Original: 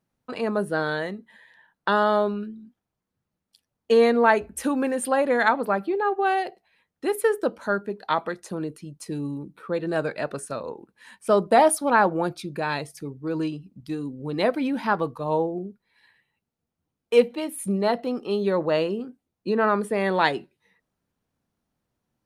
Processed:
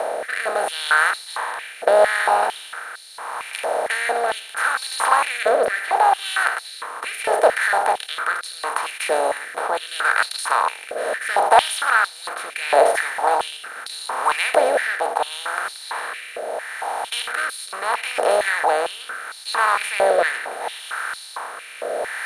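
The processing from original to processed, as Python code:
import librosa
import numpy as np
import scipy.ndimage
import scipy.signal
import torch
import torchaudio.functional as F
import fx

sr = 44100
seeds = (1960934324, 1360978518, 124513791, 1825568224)

y = fx.bin_compress(x, sr, power=0.2)
y = fx.rotary(y, sr, hz=0.75)
y = fx.filter_held_highpass(y, sr, hz=4.4, low_hz=610.0, high_hz=4200.0)
y = y * 10.0 ** (-6.0 / 20.0)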